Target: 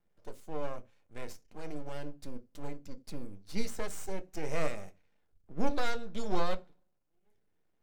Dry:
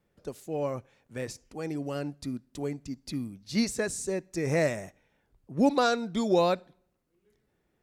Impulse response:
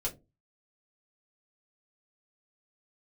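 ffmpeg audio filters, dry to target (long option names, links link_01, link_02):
-filter_complex "[0:a]aeval=exprs='max(val(0),0)':channel_layout=same,asplit=2[link_01][link_02];[1:a]atrim=start_sample=2205,atrim=end_sample=4410[link_03];[link_02][link_03]afir=irnorm=-1:irlink=0,volume=-7dB[link_04];[link_01][link_04]amix=inputs=2:normalize=0,volume=-7.5dB"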